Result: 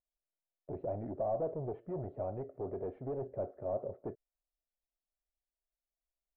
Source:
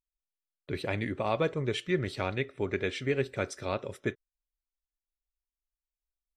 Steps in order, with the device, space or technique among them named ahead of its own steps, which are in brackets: overdriven synthesiser ladder filter (soft clip -32.5 dBFS, distortion -7 dB; ladder low-pass 740 Hz, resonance 65%); gain +6.5 dB

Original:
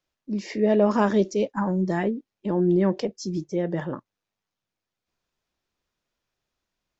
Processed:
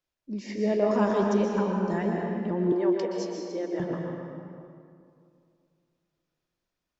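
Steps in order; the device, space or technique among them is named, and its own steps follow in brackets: stairwell (reverb RT60 2.4 s, pre-delay 0.116 s, DRR 0 dB); 2.72–3.8 HPF 280 Hz 24 dB/oct; gain -6 dB

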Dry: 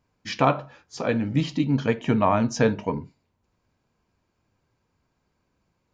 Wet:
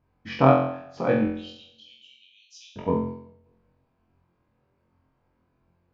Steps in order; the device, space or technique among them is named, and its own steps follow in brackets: phone in a pocket (LPF 3600 Hz 12 dB/oct; high shelf 2100 Hz -10 dB); 1.27–2.76 steep high-pass 2900 Hz 72 dB/oct; flutter echo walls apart 3.9 m, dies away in 0.63 s; darkening echo 0.194 s, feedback 34%, low-pass 1600 Hz, level -24 dB

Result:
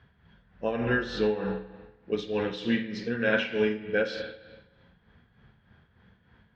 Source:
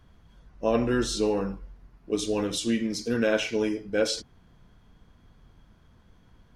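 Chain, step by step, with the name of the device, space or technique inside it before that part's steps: combo amplifier with spring reverb and tremolo (spring tank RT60 1.2 s, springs 42/47 ms, chirp 40 ms, DRR 4.5 dB; tremolo 3.3 Hz, depth 60%; speaker cabinet 78–3900 Hz, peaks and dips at 300 Hz -9 dB, 620 Hz -4 dB, 1100 Hz -5 dB, 1700 Hz +8 dB); gain +1.5 dB

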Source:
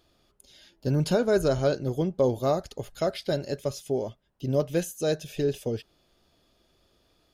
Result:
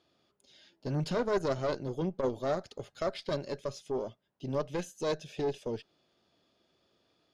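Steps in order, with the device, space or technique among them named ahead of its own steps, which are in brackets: valve radio (BPF 130–5900 Hz; tube stage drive 19 dB, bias 0.75; core saturation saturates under 170 Hz)

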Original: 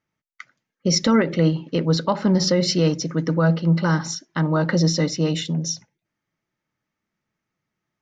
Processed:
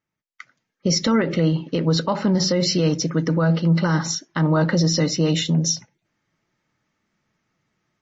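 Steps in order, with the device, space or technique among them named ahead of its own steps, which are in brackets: low-bitrate web radio (AGC gain up to 12.5 dB; limiter -7 dBFS, peak gain reduction 5.5 dB; gain -3.5 dB; MP3 32 kbps 24000 Hz)

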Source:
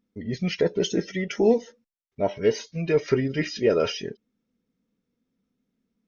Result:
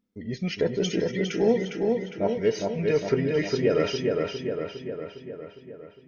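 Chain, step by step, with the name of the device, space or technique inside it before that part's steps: dub delay into a spring reverb (darkening echo 0.407 s, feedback 61%, low-pass 4100 Hz, level -3 dB; spring tank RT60 2.5 s, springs 36 ms, chirp 30 ms, DRR 17 dB); gain -2.5 dB

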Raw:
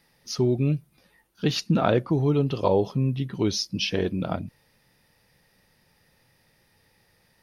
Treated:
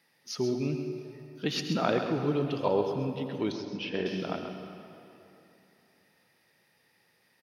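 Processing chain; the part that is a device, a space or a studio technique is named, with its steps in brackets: PA in a hall (HPF 180 Hz 12 dB/oct; bell 2100 Hz +3.5 dB 1.4 oct; echo 0.133 s -9 dB; reverb RT60 3.0 s, pre-delay 71 ms, DRR 7 dB); 3.52–4.06 LPF 2200 Hz 12 dB/oct; gain -6 dB

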